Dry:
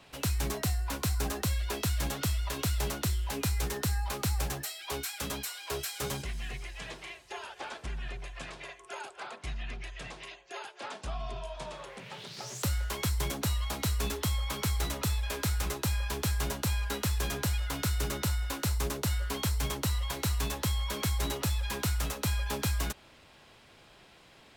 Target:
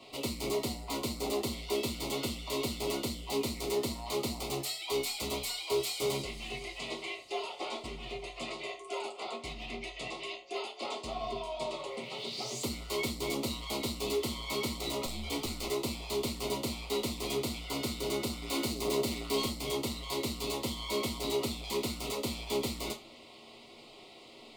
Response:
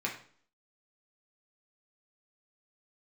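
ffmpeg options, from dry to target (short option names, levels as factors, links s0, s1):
-filter_complex "[0:a]asettb=1/sr,asplit=3[s0][s1][s2];[s0]atrim=end=5.094[s3];[s1]atrim=start=5.09:end=5.58,asetpts=PTS-STARTPTS,afade=t=in:d=0.004:c=qsin,afade=t=out:st=0.486:d=0.004:c=qsin,equalizer=f=75:t=o:w=0.77:g=10[s4];[s2]atrim=start=5.576[s5];[s3][s4]acrossfade=d=0.004:c1=hsin:c2=qsin[s6];[s6][s5]acrossfade=d=0.004:c1=qsin:c2=hsin,asplit=3[s7][s8][s9];[s7]afade=t=out:st=15.03:d=0.02[s10];[s8]afreqshift=-130,afade=t=in:st=15.03:d=0.02,afade=t=out:st=15.46:d=0.02[s11];[s9]afade=t=in:st=15.46:d=0.02[s12];[s10][s11][s12]amix=inputs=3:normalize=0,asettb=1/sr,asplit=3[s13][s14][s15];[s13]atrim=end=18.424[s16];[s14]atrim=start=18.42:end=19.44,asetpts=PTS-STARTPTS,afade=t=in:d=0.004:c=qsin,afade=t=out:st=1.016:d=0.004:c=qsin,acontrast=85[s17];[s15]atrim=start=19.436[s18];[s16][s17]acrossfade=d=0.004:c1=hsin:c2=qsin[s19];[s19][s18]acrossfade=d=0.004:c1=qsin:c2=hsin,volume=47.3,asoftclip=hard,volume=0.0211,asuperstop=centerf=1600:order=4:qfactor=2[s20];[1:a]atrim=start_sample=2205,asetrate=83790,aresample=44100[s21];[s20][s21]afir=irnorm=-1:irlink=0,volume=2"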